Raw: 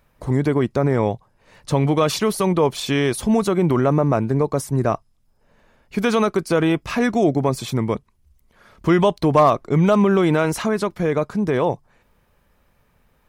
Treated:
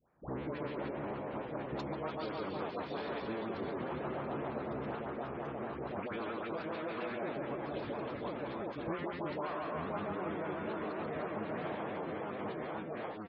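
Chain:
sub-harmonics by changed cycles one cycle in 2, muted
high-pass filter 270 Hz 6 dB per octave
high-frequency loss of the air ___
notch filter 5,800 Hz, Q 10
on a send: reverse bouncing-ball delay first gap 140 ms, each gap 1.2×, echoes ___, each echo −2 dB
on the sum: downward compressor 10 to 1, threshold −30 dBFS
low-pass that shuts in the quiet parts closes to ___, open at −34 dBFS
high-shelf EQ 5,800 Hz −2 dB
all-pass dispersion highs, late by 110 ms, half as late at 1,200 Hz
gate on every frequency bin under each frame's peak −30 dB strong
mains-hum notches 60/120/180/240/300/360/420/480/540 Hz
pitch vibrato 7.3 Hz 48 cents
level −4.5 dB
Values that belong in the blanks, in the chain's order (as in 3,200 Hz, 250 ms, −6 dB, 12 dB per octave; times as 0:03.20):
140 metres, 8, 1,400 Hz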